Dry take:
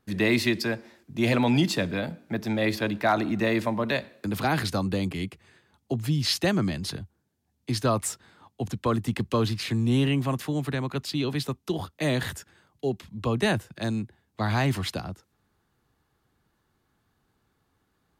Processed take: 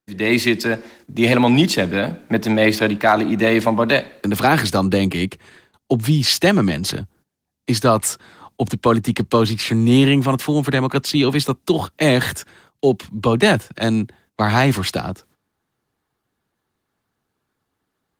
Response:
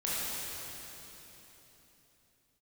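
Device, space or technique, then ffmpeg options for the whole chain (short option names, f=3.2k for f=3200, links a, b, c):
video call: -af "highpass=f=160:p=1,dynaudnorm=f=170:g=3:m=13.5dB,agate=range=-14dB:threshold=-50dB:ratio=16:detection=peak" -ar 48000 -c:a libopus -b:a 20k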